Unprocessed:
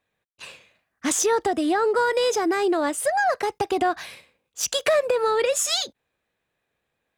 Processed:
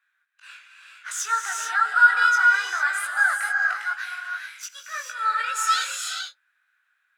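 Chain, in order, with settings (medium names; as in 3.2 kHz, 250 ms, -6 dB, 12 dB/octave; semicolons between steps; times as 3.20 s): in parallel at -0.5 dB: compression, threshold -34 dBFS, peak gain reduction 16 dB; on the sum: slow attack 144 ms; chorus 0.98 Hz, delay 17.5 ms, depth 3.1 ms; ladder high-pass 1.4 kHz, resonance 85%; gated-style reverb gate 470 ms rising, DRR 1 dB; trim +8.5 dB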